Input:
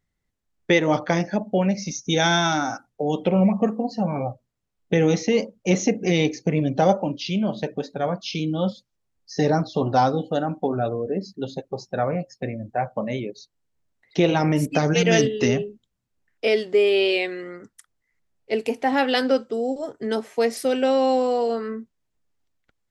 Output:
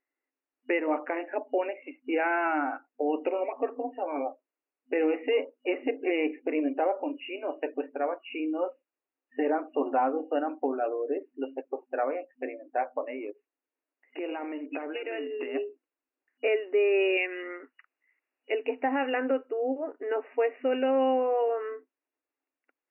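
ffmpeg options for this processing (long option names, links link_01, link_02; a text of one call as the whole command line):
ffmpeg -i in.wav -filter_complex "[0:a]asplit=3[link_01][link_02][link_03];[link_01]afade=type=out:start_time=13.05:duration=0.02[link_04];[link_02]acompressor=threshold=-26dB:ratio=6:attack=3.2:release=140:knee=1:detection=peak,afade=type=in:start_time=13.05:duration=0.02,afade=type=out:start_time=15.54:duration=0.02[link_05];[link_03]afade=type=in:start_time=15.54:duration=0.02[link_06];[link_04][link_05][link_06]amix=inputs=3:normalize=0,asettb=1/sr,asplit=3[link_07][link_08][link_09];[link_07]atrim=end=17.174[link_10];[link_08]atrim=start=17.17:end=18.52,asetpts=PTS-STARTPTS,afade=type=in:duration=0.004:curve=qsin,afade=type=out:start_time=1.346:duration=0.004:curve=qsin,equalizer=frequency=3900:width=0.5:gain=12[link_11];[link_09]atrim=start=18.516[link_12];[link_10][link_11]acrossfade=duration=0.004:curve1=hsin:curve2=qsin[link_13];[link_13][link_12]acrossfade=duration=0.004:curve1=qsin:curve2=hsin,afftfilt=real='re*between(b*sr/4096,250,2900)':imag='im*between(b*sr/4096,250,2900)':win_size=4096:overlap=0.75,alimiter=limit=-13.5dB:level=0:latency=1:release=287,volume=-3.5dB" out.wav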